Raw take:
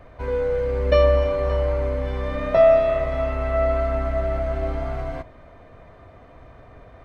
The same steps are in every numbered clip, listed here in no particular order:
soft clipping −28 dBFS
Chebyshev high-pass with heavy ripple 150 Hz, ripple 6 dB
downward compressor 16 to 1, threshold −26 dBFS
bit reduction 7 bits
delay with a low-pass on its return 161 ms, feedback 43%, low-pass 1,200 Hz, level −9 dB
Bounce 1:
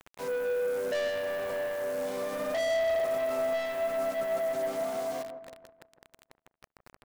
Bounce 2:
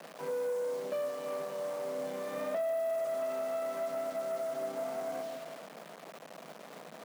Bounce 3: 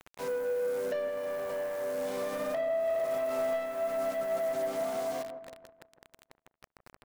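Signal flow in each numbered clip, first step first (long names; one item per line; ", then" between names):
Chebyshev high-pass with heavy ripple, then bit reduction, then soft clipping, then downward compressor, then delay with a low-pass on its return
delay with a low-pass on its return, then downward compressor, then bit reduction, then soft clipping, then Chebyshev high-pass with heavy ripple
Chebyshev high-pass with heavy ripple, then bit reduction, then downward compressor, then soft clipping, then delay with a low-pass on its return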